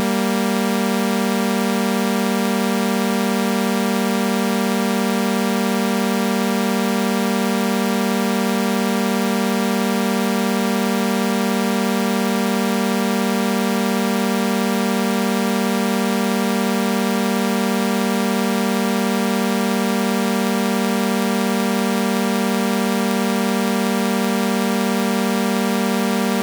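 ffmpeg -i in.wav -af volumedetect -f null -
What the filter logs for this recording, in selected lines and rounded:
mean_volume: -18.7 dB
max_volume: -10.9 dB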